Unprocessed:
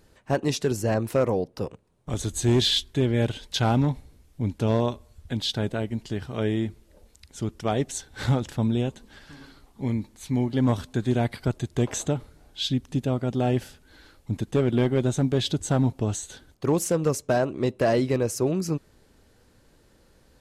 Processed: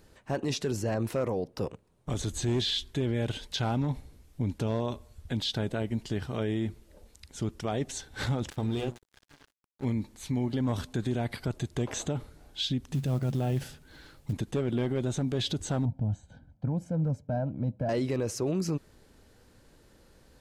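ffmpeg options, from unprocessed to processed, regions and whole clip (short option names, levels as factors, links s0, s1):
-filter_complex "[0:a]asettb=1/sr,asplit=3[s0][s1][s2];[s0]atrim=end=8.504[s3];[s1]atrim=start=8.5:end=9.85,asetpts=PTS-STARTPTS,afade=t=in:d=0.004:c=qsin,afade=t=out:st=1.346:d=0.004:c=qsin,bandreject=f=60:t=h:w=6,bandreject=f=120:t=h:w=6,bandreject=f=180:t=h:w=6,bandreject=f=240:t=h:w=6,bandreject=f=300:t=h:w=6,bandreject=f=360:t=h:w=6,bandreject=f=420:t=h:w=6,bandreject=f=480:t=h:w=6,bandreject=f=540:t=h:w=6,aecho=1:1:2.5:0.36,atrim=end_sample=59535,aeval=exprs='sgn(val(0))*max(abs(val(0))-0.00794,0)':c=same[s4];[s2]atrim=start=9.846[s5];[s3][s4]acrossfade=d=0.004:c1=hsin:c2=qsin[s6];[s6][s5]acrossfade=d=0.004:c1=qsin:c2=hsin,asettb=1/sr,asplit=3[s7][s8][s9];[s7]atrim=end=12.914[s10];[s8]atrim=start=12.91:end=14.33,asetpts=PTS-STARTPTS,afade=t=in:d=0.004:c=qsin,afade=t=out:st=1.416:d=0.004:c=qsin,equalizer=f=140:t=o:w=0.37:g=11.5,acompressor=threshold=0.1:ratio=3:attack=3.2:release=140:knee=1:detection=peak,acrusher=bits=7:mode=log:mix=0:aa=0.000001[s11];[s9]atrim=start=14.326[s12];[s10][s11]acrossfade=d=0.004:c1=hsin:c2=qsin[s13];[s13][s12]acrossfade=d=0.004:c1=qsin:c2=hsin,asettb=1/sr,asplit=3[s14][s15][s16];[s14]atrim=end=15.854[s17];[s15]atrim=start=15.85:end=17.89,asetpts=PTS-STARTPTS,afade=t=in:d=0.004:c=qsin,afade=t=out:st=2.036:d=0.004:c=qsin,bandpass=f=150:t=q:w=0.68,aecho=1:1:1.3:0.92,atrim=end_sample=89964[s18];[s16]atrim=start=17.886[s19];[s17][s18]acrossfade=d=0.004:c1=hsin:c2=qsin[s20];[s20][s19]acrossfade=d=0.004:c1=qsin:c2=hsin,acrossover=split=6200[s21][s22];[s22]acompressor=threshold=0.00631:ratio=4:attack=1:release=60[s23];[s21][s23]amix=inputs=2:normalize=0,alimiter=limit=0.0794:level=0:latency=1:release=42"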